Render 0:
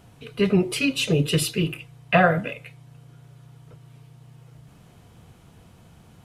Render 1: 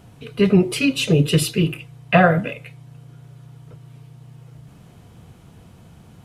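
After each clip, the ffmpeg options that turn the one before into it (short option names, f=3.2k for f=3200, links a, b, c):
-af "equalizer=f=160:w=0.38:g=3.5,volume=2dB"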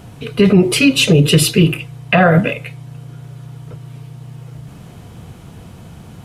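-af "alimiter=level_in=10.5dB:limit=-1dB:release=50:level=0:latency=1,volume=-1dB"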